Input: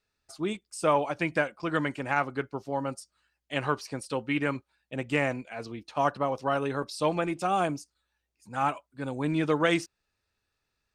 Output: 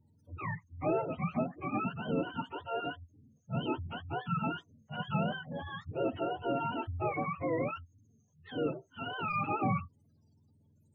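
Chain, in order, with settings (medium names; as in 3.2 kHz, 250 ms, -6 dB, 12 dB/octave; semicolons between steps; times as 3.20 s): spectrum inverted on a logarithmic axis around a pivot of 620 Hz; power-law waveshaper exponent 0.7; spectral gate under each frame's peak -25 dB strong; trim -8 dB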